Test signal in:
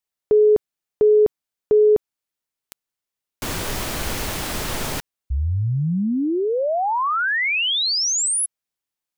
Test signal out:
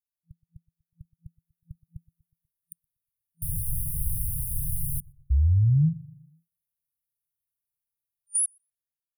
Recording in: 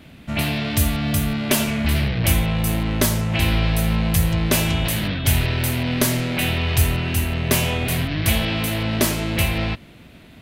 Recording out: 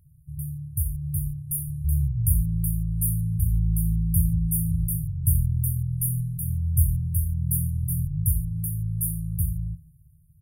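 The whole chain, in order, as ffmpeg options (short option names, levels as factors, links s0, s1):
-filter_complex "[0:a]afftfilt=real='re*(1-between(b*sr/4096,170,9200))':imag='im*(1-between(b*sr/4096,170,9200))':win_size=4096:overlap=0.75,adynamicequalizer=threshold=0.00501:dfrequency=280:dqfactor=3.2:tfrequency=280:tqfactor=3.2:attack=5:release=100:ratio=0.45:range=2:mode=boostabove:tftype=bell,dynaudnorm=f=410:g=7:m=2.66,asplit=2[s0][s1];[s1]adelay=122,lowpass=f=1700:p=1,volume=0.0891,asplit=2[s2][s3];[s3]adelay=122,lowpass=f=1700:p=1,volume=0.51,asplit=2[s4][s5];[s5]adelay=122,lowpass=f=1700:p=1,volume=0.51,asplit=2[s6][s7];[s7]adelay=122,lowpass=f=1700:p=1,volume=0.51[s8];[s0][s2][s4][s6][s8]amix=inputs=5:normalize=0,volume=0.447"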